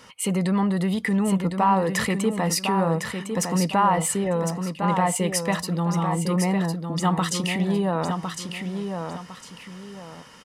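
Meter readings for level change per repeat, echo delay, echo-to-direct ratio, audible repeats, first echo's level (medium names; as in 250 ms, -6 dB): -10.5 dB, 1056 ms, -6.0 dB, 2, -6.5 dB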